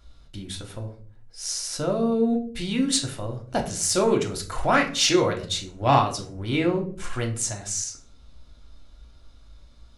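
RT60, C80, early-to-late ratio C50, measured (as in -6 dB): 0.45 s, 16.0 dB, 11.0 dB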